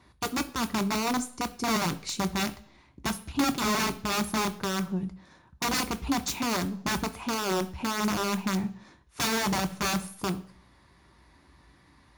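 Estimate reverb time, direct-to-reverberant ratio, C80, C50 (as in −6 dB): 0.55 s, 8.5 dB, 20.5 dB, 17.0 dB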